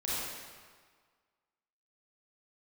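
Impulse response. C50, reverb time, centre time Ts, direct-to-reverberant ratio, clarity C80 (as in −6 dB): −4.5 dB, 1.6 s, 132 ms, −9.0 dB, −1.5 dB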